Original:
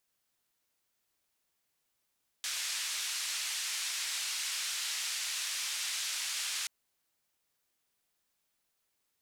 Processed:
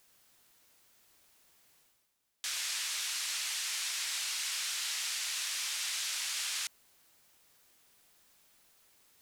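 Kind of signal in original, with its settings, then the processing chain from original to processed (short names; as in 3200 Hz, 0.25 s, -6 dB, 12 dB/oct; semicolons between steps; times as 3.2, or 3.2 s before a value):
noise band 1900–7400 Hz, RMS -36 dBFS 4.23 s
reverse; upward compressor, threshold -52 dBFS; reverse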